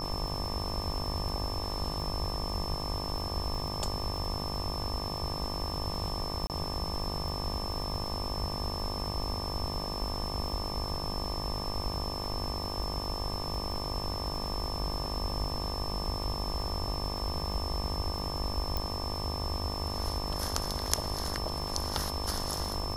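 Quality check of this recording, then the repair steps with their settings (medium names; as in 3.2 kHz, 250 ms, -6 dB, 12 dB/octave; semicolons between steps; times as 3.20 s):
buzz 50 Hz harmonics 24 -39 dBFS
crackle 24 per s -37 dBFS
whine 5.3 kHz -38 dBFS
6.47–6.50 s: dropout 28 ms
18.77 s: pop -17 dBFS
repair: de-click; de-hum 50 Hz, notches 24; band-stop 5.3 kHz, Q 30; interpolate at 6.47 s, 28 ms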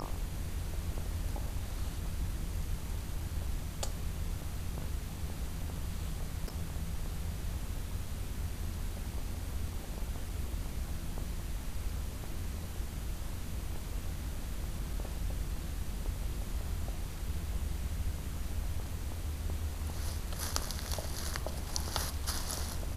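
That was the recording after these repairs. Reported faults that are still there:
nothing left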